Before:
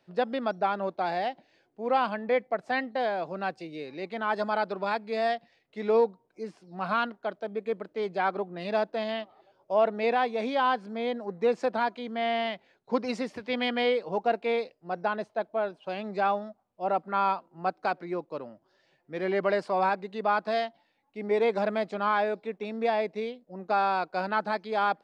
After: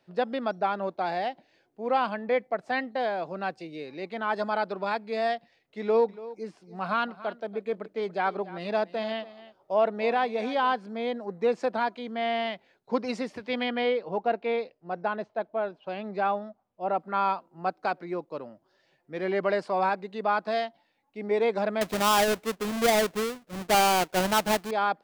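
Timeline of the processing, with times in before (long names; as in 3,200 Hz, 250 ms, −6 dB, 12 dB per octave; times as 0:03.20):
0:05.80–0:10.73: single-tap delay 285 ms −17 dB
0:13.63–0:17.00: high-frequency loss of the air 130 metres
0:21.81–0:24.71: each half-wave held at its own peak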